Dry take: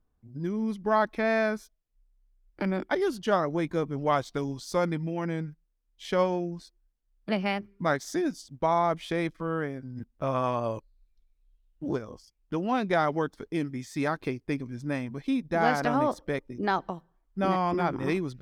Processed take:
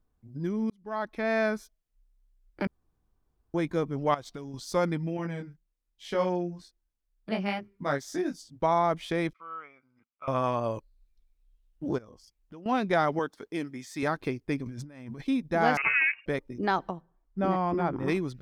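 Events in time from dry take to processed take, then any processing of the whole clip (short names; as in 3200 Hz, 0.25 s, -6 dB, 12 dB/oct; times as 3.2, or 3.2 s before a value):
0.7–1.46 fade in
2.67–3.54 room tone
4.14–4.54 compressor 4:1, threshold -37 dBFS
5.17–8.6 chorus 1.2 Hz, delay 18 ms, depth 4.8 ms
9.33–10.28 double band-pass 1700 Hz, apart 0.82 oct
11.98–12.66 compressor 2.5:1, threshold -51 dBFS
13.19–14.03 HPF 340 Hz 6 dB/oct
14.66–15.24 negative-ratio compressor -42 dBFS
15.77–16.26 inverted band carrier 2800 Hz
16.91–18.08 high shelf 2100 Hz -11 dB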